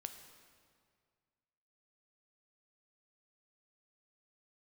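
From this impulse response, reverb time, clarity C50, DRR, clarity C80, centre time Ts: 2.0 s, 8.5 dB, 7.0 dB, 9.5 dB, 26 ms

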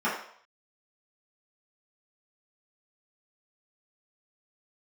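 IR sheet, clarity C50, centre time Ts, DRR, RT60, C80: 4.0 dB, 39 ms, -10.5 dB, 0.60 s, 8.0 dB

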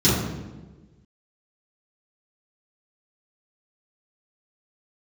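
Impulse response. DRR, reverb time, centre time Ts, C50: -12.0 dB, 1.3 s, 73 ms, -0.5 dB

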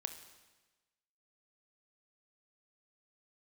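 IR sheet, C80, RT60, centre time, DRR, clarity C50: 11.5 dB, 1.2 s, 15 ms, 8.0 dB, 9.5 dB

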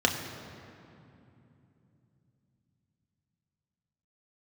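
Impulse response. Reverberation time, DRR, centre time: 2.9 s, 1.0 dB, 52 ms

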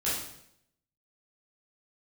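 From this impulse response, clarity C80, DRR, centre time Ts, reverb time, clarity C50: 5.5 dB, -10.0 dB, 58 ms, 0.70 s, 1.0 dB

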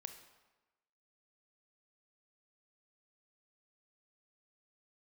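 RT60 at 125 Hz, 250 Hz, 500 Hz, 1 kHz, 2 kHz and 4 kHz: 1.0, 1.1, 1.1, 1.1, 1.0, 0.85 s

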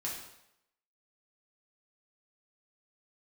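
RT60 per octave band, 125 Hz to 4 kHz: 0.70, 0.70, 0.80, 0.80, 0.75, 0.70 s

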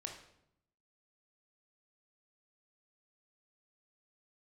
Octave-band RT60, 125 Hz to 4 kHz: 1.1, 1.0, 0.80, 0.70, 0.65, 0.55 s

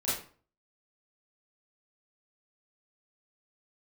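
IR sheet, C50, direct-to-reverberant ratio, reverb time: 2.0 dB, -10.5 dB, 0.45 s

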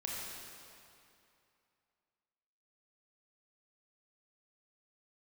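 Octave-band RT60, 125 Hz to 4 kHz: 2.6, 2.6, 2.6, 2.7, 2.4, 2.2 s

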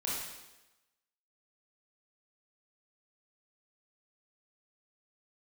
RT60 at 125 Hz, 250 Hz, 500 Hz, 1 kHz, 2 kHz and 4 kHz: 0.85, 1.0, 1.1, 1.0, 1.0, 1.0 s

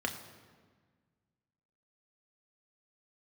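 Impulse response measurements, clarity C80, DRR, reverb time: 11.0 dB, 3.0 dB, 1.5 s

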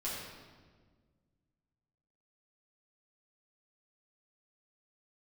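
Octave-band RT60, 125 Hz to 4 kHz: 2.5, 2.3, 1.7, 1.4, 1.2, 1.1 s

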